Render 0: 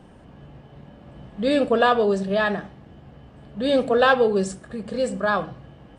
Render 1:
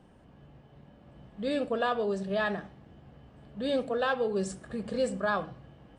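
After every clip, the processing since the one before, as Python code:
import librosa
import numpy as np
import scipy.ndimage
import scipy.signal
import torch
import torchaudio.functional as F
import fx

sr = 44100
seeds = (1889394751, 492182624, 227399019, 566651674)

y = fx.rider(x, sr, range_db=5, speed_s=0.5)
y = y * 10.0 ** (-8.5 / 20.0)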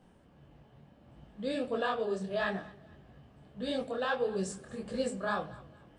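y = fx.high_shelf(x, sr, hz=4700.0, db=4.5)
y = fx.echo_feedback(y, sr, ms=232, feedback_pct=34, wet_db=-21)
y = fx.detune_double(y, sr, cents=56)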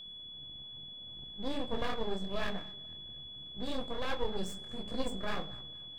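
y = np.maximum(x, 0.0)
y = y + 10.0 ** (-43.0 / 20.0) * np.sin(2.0 * np.pi * 3400.0 * np.arange(len(y)) / sr)
y = fx.low_shelf(y, sr, hz=260.0, db=8.0)
y = y * 10.0 ** (-2.0 / 20.0)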